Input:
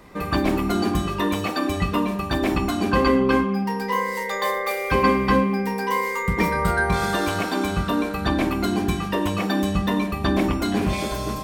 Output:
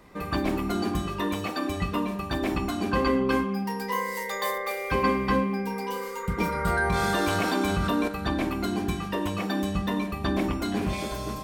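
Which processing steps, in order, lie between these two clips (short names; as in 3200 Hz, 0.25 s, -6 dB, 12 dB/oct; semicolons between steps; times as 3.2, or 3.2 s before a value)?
3.29–4.58 high shelf 6000 Hz +8 dB; 5.67–6.66 spectral repair 1000–2200 Hz both; 6.67–8.08 fast leveller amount 70%; gain -5.5 dB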